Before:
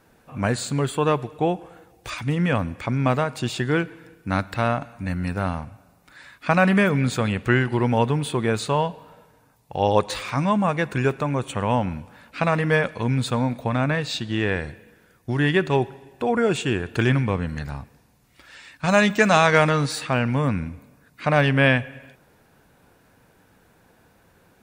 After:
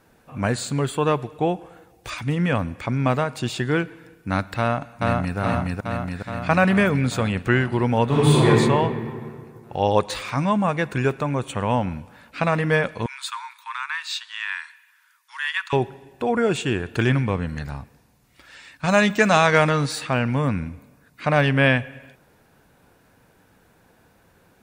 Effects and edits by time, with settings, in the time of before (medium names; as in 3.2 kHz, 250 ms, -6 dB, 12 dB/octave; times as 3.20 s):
4.59–5.38 s: echo throw 420 ms, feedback 70%, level -0.5 dB
8.05–8.47 s: reverb throw, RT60 2.1 s, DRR -9 dB
13.06–15.73 s: steep high-pass 930 Hz 96 dB/octave